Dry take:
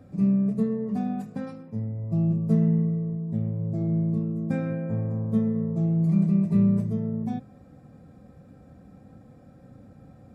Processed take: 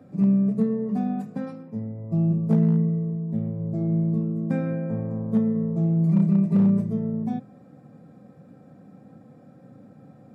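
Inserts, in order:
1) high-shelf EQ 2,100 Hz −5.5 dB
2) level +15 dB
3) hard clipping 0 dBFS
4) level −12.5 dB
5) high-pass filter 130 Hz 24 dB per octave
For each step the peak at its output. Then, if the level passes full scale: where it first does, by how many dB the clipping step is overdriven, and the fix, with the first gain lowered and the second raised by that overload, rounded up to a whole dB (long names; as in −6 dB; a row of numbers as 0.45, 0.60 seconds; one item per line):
−11.0, +4.0, 0.0, −12.5, −10.0 dBFS
step 2, 4.0 dB
step 2 +11 dB, step 4 −8.5 dB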